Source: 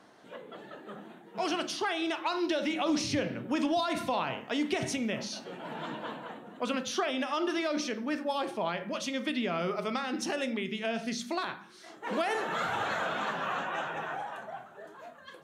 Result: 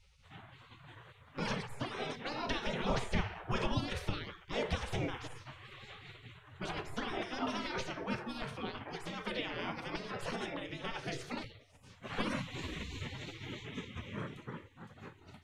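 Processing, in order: spectral gate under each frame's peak -20 dB weak; tilt EQ -4.5 dB/octave; trim +7.5 dB

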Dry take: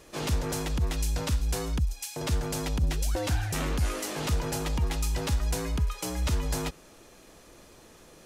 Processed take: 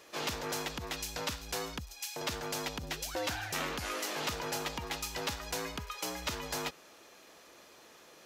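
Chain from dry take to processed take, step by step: high-pass 740 Hz 6 dB/octave; peaking EQ 9.2 kHz -8.5 dB 0.75 oct; trim +1 dB

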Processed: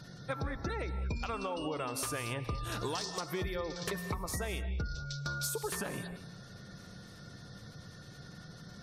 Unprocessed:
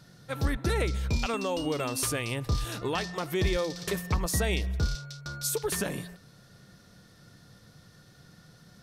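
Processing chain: 2.81–3.21 s: resonant high shelf 3.5 kHz +12.5 dB, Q 1.5; spectral gate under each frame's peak -30 dB strong; dynamic bell 1.1 kHz, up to +7 dB, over -46 dBFS, Q 0.92; compression 12:1, threshold -38 dBFS, peak gain reduction 18 dB; hard clipper -31.5 dBFS, distortion -29 dB; gated-style reverb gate 240 ms rising, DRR 10.5 dB; trim +4.5 dB

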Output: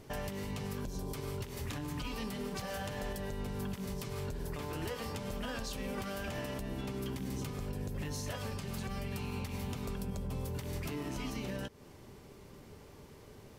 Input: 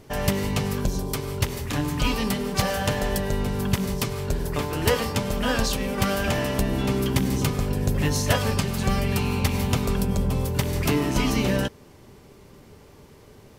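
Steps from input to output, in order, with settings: compression, threshold -30 dBFS, peak gain reduction 14 dB; peak limiter -25 dBFS, peak gain reduction 6.5 dB; trim -4.5 dB

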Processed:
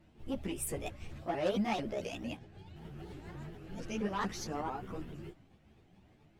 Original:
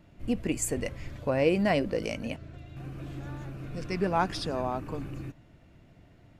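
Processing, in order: sawtooth pitch modulation +4.5 st, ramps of 223 ms; Chebyshev shaper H 5 -15 dB, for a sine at -12.5 dBFS; three-phase chorus; trim -7.5 dB

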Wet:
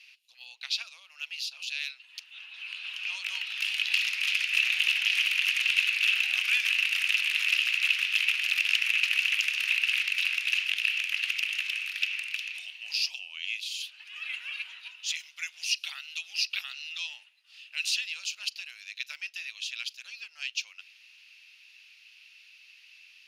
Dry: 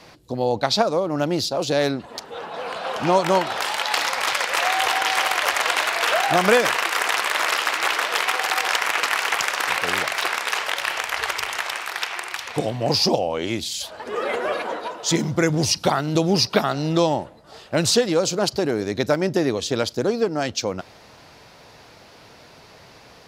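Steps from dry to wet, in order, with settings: ladder high-pass 2.5 kHz, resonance 80%; band-stop 7.7 kHz, Q 7.4; trim +1 dB

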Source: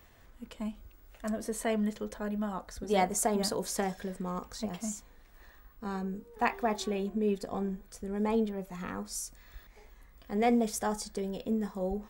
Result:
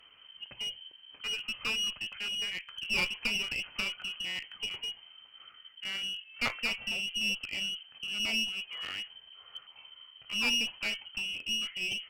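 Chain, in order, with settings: frequency inversion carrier 3.1 kHz; one-sided clip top -35 dBFS

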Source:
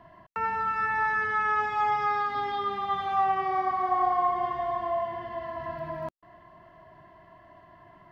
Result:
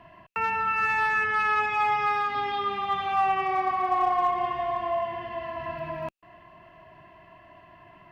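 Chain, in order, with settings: peaking EQ 2.6 kHz +15 dB 0.33 oct; in parallel at -4.5 dB: one-sided clip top -22 dBFS; on the sum: trim -3 dB

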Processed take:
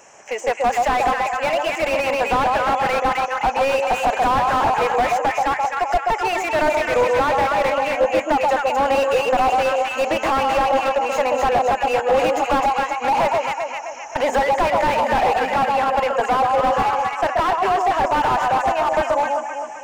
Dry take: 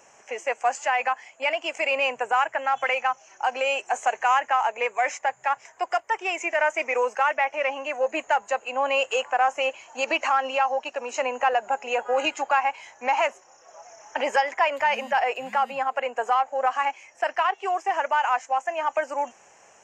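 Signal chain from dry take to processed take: echo whose repeats swap between lows and highs 130 ms, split 1 kHz, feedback 70%, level -2.5 dB; slew-rate limiter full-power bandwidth 68 Hz; trim +7 dB

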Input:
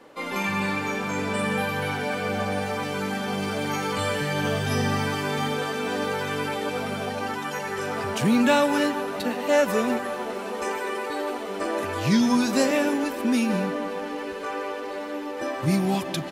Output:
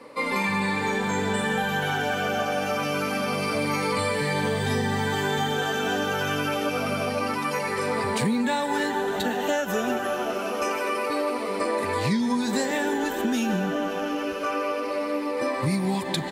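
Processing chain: drifting ripple filter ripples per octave 0.95, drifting -0.26 Hz, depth 9 dB; 1.37–3.55 s: de-hum 98.96 Hz, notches 3; compression 10:1, threshold -24 dBFS, peak gain reduction 11 dB; trim +3 dB

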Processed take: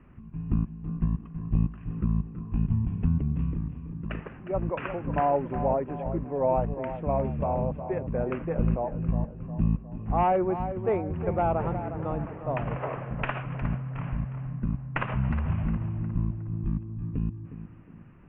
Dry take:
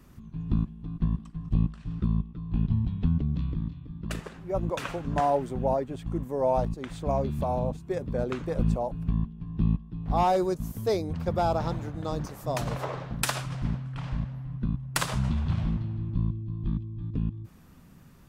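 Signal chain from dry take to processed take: tracing distortion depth 0.091 ms; steep low-pass 2.8 kHz 72 dB/octave; tape echo 360 ms, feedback 52%, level -9 dB, low-pass 2 kHz

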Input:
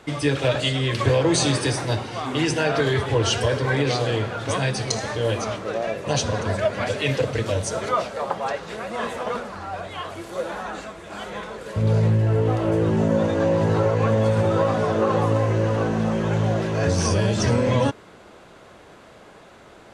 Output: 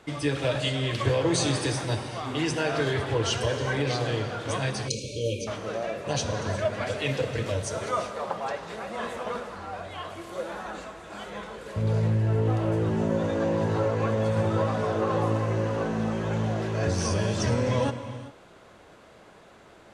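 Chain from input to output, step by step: gated-style reverb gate 430 ms flat, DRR 9 dB; spectral selection erased 4.88–5.47 s, 590–2200 Hz; trim -5.5 dB

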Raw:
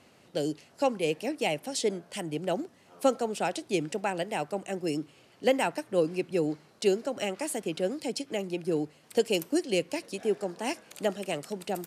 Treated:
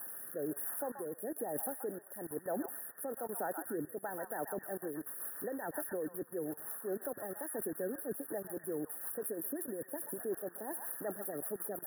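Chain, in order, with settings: zero-crossing glitches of -29 dBFS; bass shelf 320 Hz -8.5 dB; harmonic-percussive split harmonic -9 dB; dynamic bell 1.1 kHz, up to -7 dB, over -46 dBFS, Q 0.94; level held to a coarse grid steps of 23 dB; peak limiter -38.5 dBFS, peak gain reduction 8 dB; rotary cabinet horn 1.1 Hz, later 5.5 Hz, at 4.31 s; brick-wall FIR band-stop 1.9–9.7 kHz; repeats whose band climbs or falls 131 ms, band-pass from 1.2 kHz, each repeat 0.7 oct, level -2.5 dB; trim +12.5 dB

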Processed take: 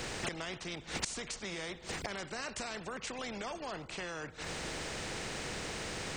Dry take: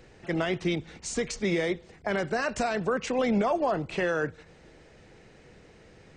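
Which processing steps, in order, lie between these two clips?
inverted gate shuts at -34 dBFS, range -24 dB; spectrum-flattening compressor 2:1; trim +14 dB

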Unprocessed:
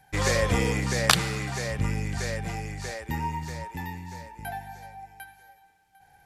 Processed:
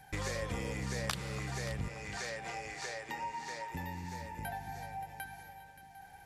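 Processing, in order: 1.88–3.70 s: band-pass 500–7500 Hz; compression 3:1, threshold -43 dBFS, peak gain reduction 21 dB; echo whose repeats swap between lows and highs 288 ms, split 1.2 kHz, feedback 70%, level -10 dB; trim +2.5 dB

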